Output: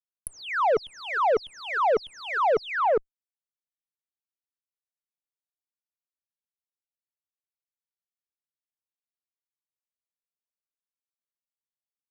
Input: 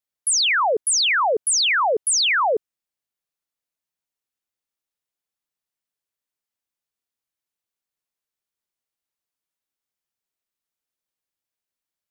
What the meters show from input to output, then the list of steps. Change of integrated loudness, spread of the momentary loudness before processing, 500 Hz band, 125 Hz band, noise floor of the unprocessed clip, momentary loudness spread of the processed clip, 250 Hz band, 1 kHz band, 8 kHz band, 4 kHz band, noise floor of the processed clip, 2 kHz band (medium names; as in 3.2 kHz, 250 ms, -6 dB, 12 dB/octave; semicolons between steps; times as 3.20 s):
-7.5 dB, 4 LU, -0.5 dB, no reading, under -85 dBFS, 7 LU, +1.0 dB, -2.0 dB, under -25 dB, -19.5 dB, under -85 dBFS, -9.0 dB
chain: echo from a far wall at 70 m, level -15 dB; spectral gate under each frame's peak -30 dB strong; bass shelf 78 Hz +7.5 dB; fuzz box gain 42 dB, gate -50 dBFS; low-pass that closes with the level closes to 1.1 kHz, closed at -18.5 dBFS; trim -5.5 dB